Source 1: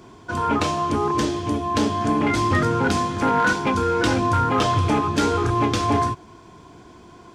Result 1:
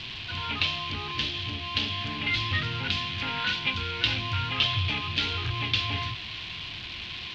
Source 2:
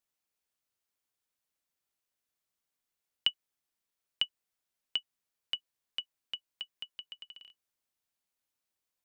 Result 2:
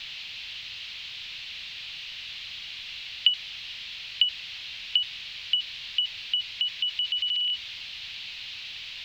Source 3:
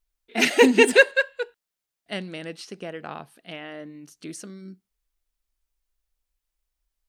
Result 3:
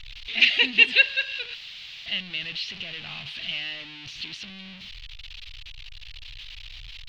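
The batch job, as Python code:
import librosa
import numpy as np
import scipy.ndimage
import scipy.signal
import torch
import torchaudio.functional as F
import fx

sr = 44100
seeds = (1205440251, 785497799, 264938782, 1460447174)

y = x + 0.5 * 10.0 ** (-26.0 / 20.0) * np.sign(x)
y = fx.curve_eq(y, sr, hz=(110.0, 370.0, 1400.0, 2800.0, 4100.0, 9300.0), db=(0, -15, -6, 15, 11, -29))
y = y * 10.0 ** (-8.5 / 20.0)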